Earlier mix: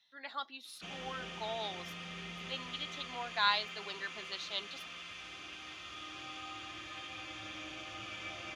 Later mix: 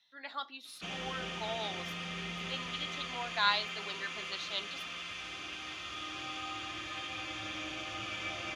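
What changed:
speech: send +10.5 dB; background +5.0 dB

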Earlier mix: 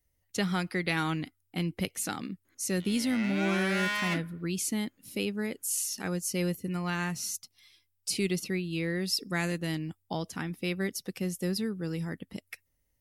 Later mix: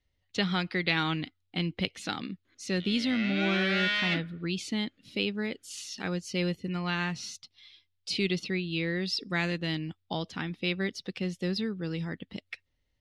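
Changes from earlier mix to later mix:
background: add Butterworth band-stop 940 Hz, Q 3.1; master: add resonant low-pass 3.7 kHz, resonance Q 2.4

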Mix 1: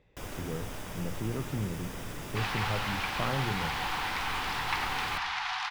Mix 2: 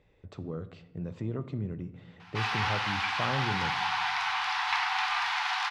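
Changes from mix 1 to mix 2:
first sound: muted; second sound: send +10.5 dB

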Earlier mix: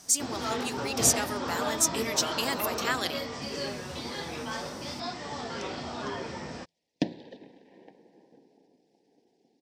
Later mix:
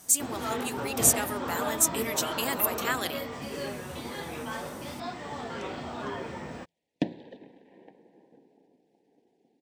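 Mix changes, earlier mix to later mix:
speech: add treble shelf 7.2 kHz +10 dB; first sound: remove Savitzky-Golay filter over 9 samples; master: add peaking EQ 5.2 kHz -11.5 dB 0.74 oct

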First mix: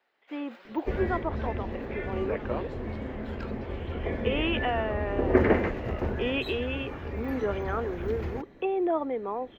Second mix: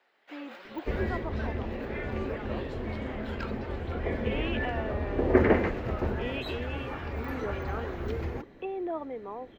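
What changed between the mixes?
speech -7.0 dB; first sound +5.0 dB

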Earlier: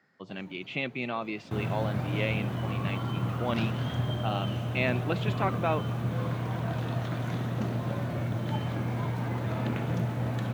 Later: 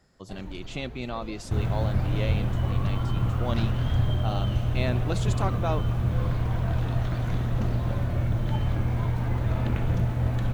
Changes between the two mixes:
speech: remove resonant low-pass 2.5 kHz, resonance Q 2.2; first sound +6.5 dB; master: remove high-pass 130 Hz 24 dB/octave

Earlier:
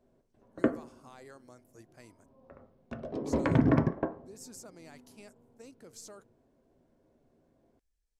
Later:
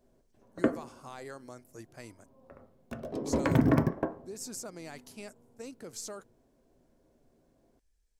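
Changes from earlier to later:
speech +7.5 dB; background: remove distance through air 120 m

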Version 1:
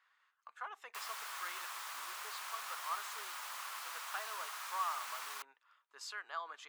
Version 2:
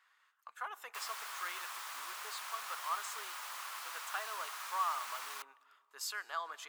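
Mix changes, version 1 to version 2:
speech: remove distance through air 70 m; reverb: on, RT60 2.3 s

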